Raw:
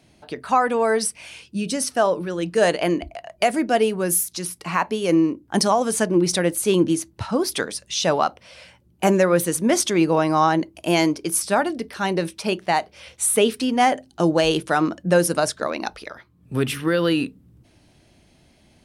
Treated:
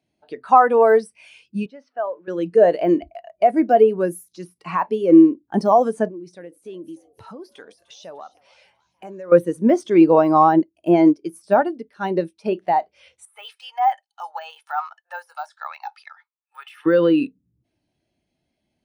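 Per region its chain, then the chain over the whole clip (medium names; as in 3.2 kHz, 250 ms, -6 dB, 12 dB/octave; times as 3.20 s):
1.66–2.28 s: companding laws mixed up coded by mu + high-pass 1.3 kHz 6 dB/octave + tape spacing loss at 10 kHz 44 dB
6.08–9.32 s: compression 5:1, threshold -32 dBFS + frequency-shifting echo 298 ms, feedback 63%, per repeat +120 Hz, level -17.5 dB
10.29–12.46 s: bass shelf 490 Hz +3 dB + upward expansion, over -31 dBFS
13.25–16.86 s: de-esser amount 75% + elliptic high-pass 790 Hz, stop band 80 dB + comb 2.3 ms, depth 31%
whole clip: de-esser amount 90%; bass shelf 230 Hz -9 dB; spectral contrast expander 1.5:1; trim +7.5 dB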